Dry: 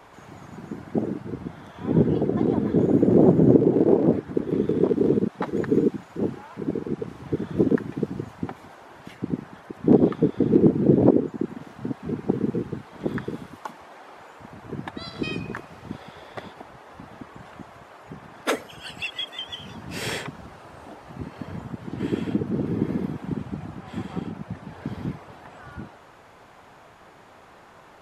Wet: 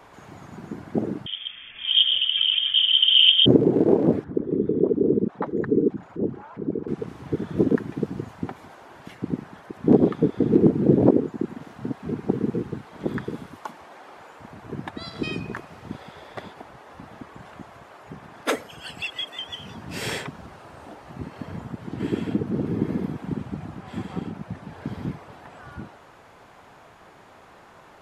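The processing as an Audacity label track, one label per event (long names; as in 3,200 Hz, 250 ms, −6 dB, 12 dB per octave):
1.260000	3.460000	voice inversion scrambler carrier 3,400 Hz
4.240000	6.880000	spectral envelope exaggerated exponent 1.5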